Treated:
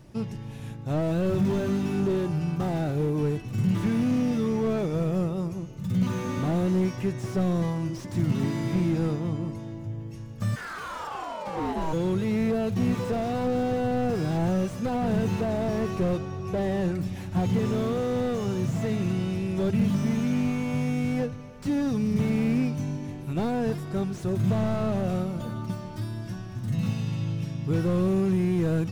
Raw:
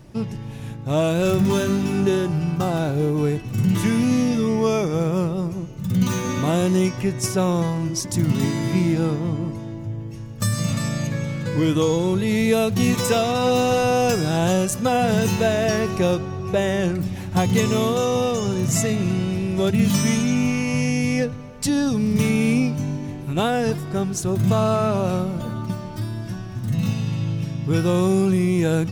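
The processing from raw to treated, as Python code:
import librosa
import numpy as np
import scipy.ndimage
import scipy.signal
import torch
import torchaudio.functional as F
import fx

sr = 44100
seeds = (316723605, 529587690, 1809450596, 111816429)

y = fx.ring_mod(x, sr, carrier_hz=fx.line((10.55, 1700.0), (11.92, 460.0)), at=(10.55, 11.92), fade=0.02)
y = fx.slew_limit(y, sr, full_power_hz=50.0)
y = y * 10.0 ** (-5.0 / 20.0)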